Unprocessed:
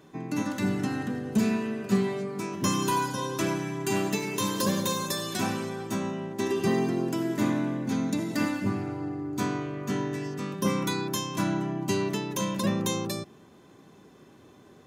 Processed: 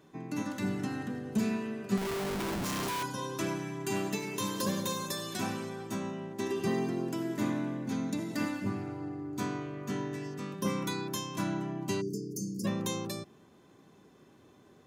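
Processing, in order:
0:01.97–0:03.03: comparator with hysteresis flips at −40 dBFS
0:12.01–0:12.65: time-frequency box erased 510–4,400 Hz
level −5.5 dB

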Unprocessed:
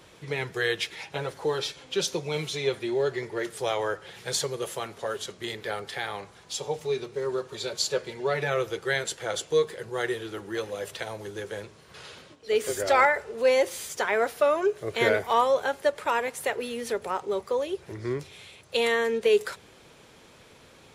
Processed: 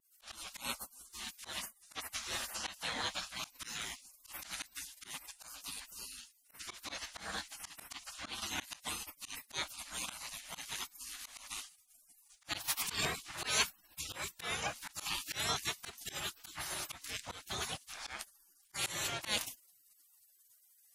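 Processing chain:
gate on every frequency bin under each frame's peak −30 dB weak
pitch vibrato 1.9 Hz 26 cents
volume swells 127 ms
level +10.5 dB

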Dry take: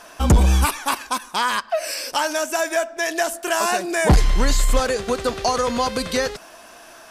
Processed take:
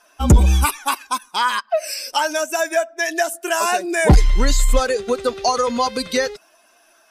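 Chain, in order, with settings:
spectral dynamics exaggerated over time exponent 1.5
level +4.5 dB

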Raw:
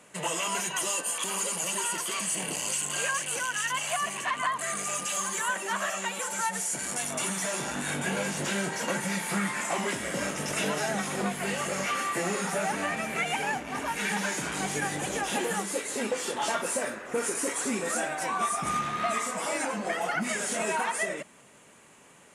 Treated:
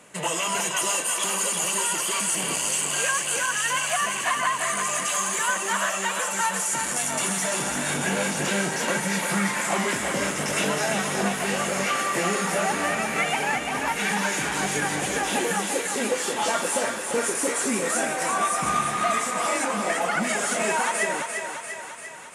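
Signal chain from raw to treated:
feedback echo with a high-pass in the loop 345 ms, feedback 63%, high-pass 390 Hz, level −5.5 dB
level +4 dB

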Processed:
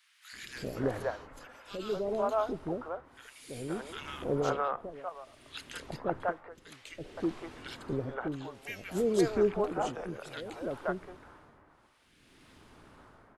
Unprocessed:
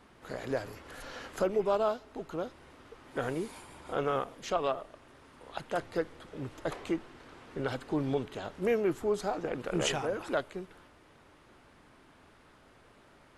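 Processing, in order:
0:05.94–0:06.55: downward compressor 12 to 1, threshold −40 dBFS, peak gain reduction 15 dB
shaped tremolo triangle 0.58 Hz, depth 95%
three-band delay without the direct sound highs, lows, mids 330/520 ms, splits 540/1,800 Hz
level +6.5 dB

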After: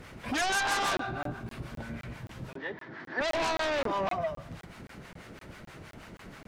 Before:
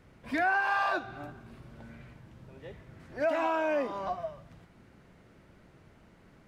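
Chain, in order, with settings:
two-band tremolo in antiphase 6.2 Hz, depth 70%, crossover 710 Hz
in parallel at −10 dB: sine wavefolder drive 16 dB, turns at −20 dBFS
0:02.56–0:03.21: on the sum: loudspeaker in its box 260–4,800 Hz, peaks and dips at 310 Hz +6 dB, 530 Hz −4 dB, 950 Hz +5 dB, 1,700 Hz +10 dB, 2,600 Hz −5 dB
regular buffer underruns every 0.26 s, samples 1,024, zero, from 0:00.97
one half of a high-frequency compander encoder only

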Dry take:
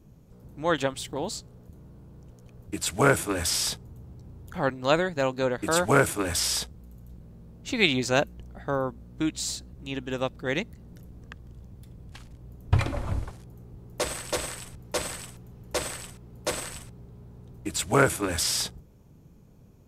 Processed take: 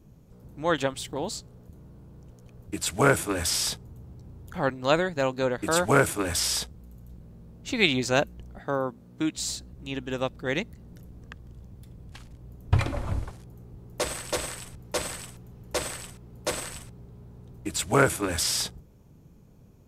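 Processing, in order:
0:08.59–0:09.38: high-pass filter 130 Hz 12 dB per octave

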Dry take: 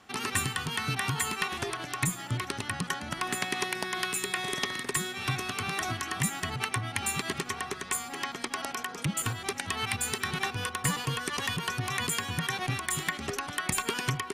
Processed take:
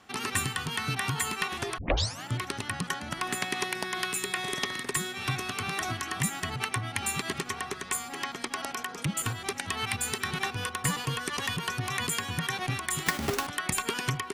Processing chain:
0:01.78: tape start 0.47 s
0:13.06–0:13.47: each half-wave held at its own peak

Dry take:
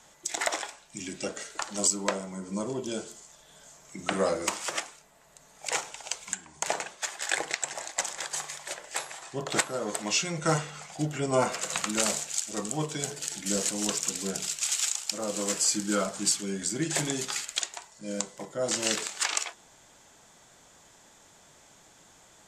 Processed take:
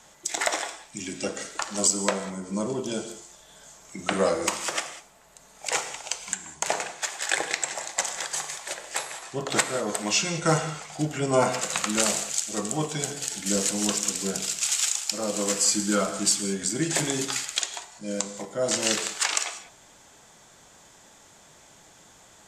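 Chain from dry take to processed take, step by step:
reverb whose tail is shaped and stops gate 220 ms flat, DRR 9.5 dB
level +3 dB

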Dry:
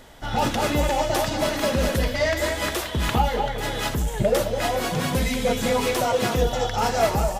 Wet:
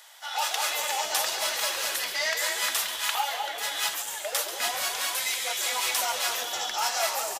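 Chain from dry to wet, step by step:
inverse Chebyshev high-pass filter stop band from 220 Hz, stop band 60 dB
high-shelf EQ 2,600 Hz +11 dB
echo with shifted repeats 137 ms, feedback 46%, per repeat −130 Hz, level −11 dB
level −5.5 dB

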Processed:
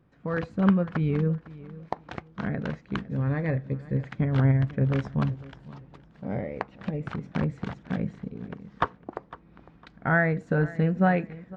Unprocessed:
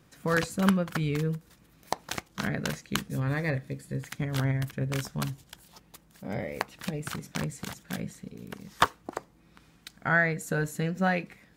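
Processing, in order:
automatic gain control gain up to 9 dB
head-to-tape spacing loss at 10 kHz 43 dB
repeating echo 505 ms, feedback 27%, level −18.5 dB
level −1.5 dB

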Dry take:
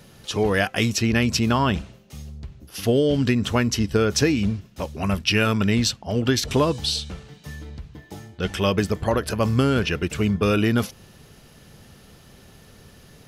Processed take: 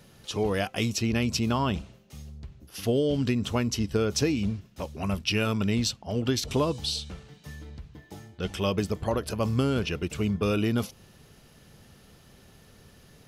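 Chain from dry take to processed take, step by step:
dynamic equaliser 1,700 Hz, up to −7 dB, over −43 dBFS, Q 2.5
level −5.5 dB

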